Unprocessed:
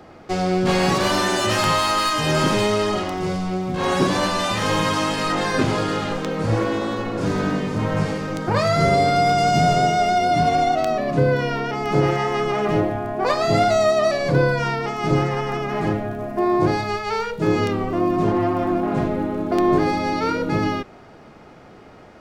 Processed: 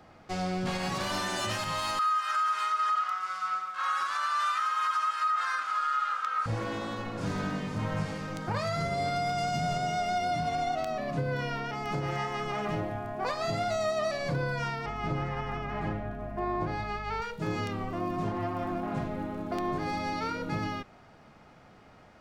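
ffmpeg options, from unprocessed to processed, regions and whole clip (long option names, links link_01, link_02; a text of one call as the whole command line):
ffmpeg -i in.wav -filter_complex "[0:a]asettb=1/sr,asplit=3[link_01][link_02][link_03];[link_01]atrim=end=1.994[link_04];[link_02]atrim=start=1.99:end=6.46,asetpts=PTS-STARTPTS,afade=type=in:duration=0.004:curve=qsin,afade=type=out:start_time=4.466:duration=0.004:curve=qsin,highpass=frequency=1300:width_type=q:width=14,tremolo=f=2:d=0.43[link_05];[link_03]atrim=start=6.456[link_06];[link_04][link_05]acrossfade=duration=0.004:curve1=hsin:curve2=qsin[link_07];[link_07][link_06]acrossfade=duration=0.004:curve1=qsin:curve2=hsin,asettb=1/sr,asplit=3[link_08][link_09][link_10];[link_08]atrim=end=14.864[link_11];[link_09]atrim=start=14.86:end=17.22,asetpts=PTS-STARTPTS,afade=type=in:duration=0.004:curve=qsin,afade=type=out:start_time=2.356:duration=0.004:curve=qsin,bass=frequency=250:gain=-1,treble=frequency=4000:gain=-11,aeval=exprs='val(0)+0.0251*(sin(2*PI*50*n/s)+sin(2*PI*2*50*n/s)/2+sin(2*PI*3*50*n/s)/3+sin(2*PI*4*50*n/s)/4+sin(2*PI*5*50*n/s)/5)':channel_layout=same[link_12];[link_10]atrim=start=17.216[link_13];[link_11][link_12]acrossfade=duration=0.004:curve1=hsin:curve2=qsin[link_14];[link_14][link_13]acrossfade=duration=0.004:curve1=qsin:curve2=hsin,equalizer=frequency=380:width=1.4:gain=-7.5,alimiter=limit=-13.5dB:level=0:latency=1:release=184,volume=-8dB" out.wav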